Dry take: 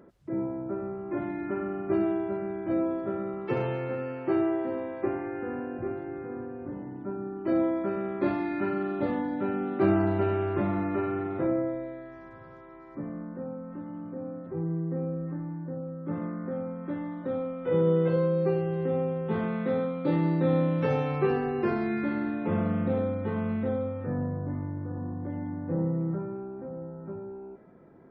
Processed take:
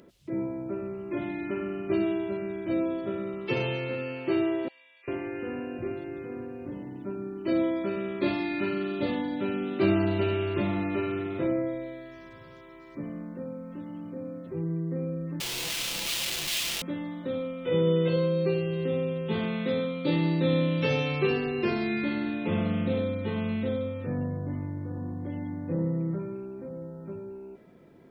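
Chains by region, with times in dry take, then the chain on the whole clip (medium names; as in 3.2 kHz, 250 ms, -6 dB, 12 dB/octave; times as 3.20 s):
4.68–5.08 s: band-pass filter 2.6 kHz, Q 0.9 + differentiator + comb 4.2 ms, depth 59%
15.40–16.82 s: peaking EQ 71 Hz +14 dB 1.1 oct + integer overflow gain 35.5 dB + comb 5.9 ms, depth 48%
whole clip: resonant high shelf 2.1 kHz +11.5 dB, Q 1.5; band-stop 790 Hz, Q 12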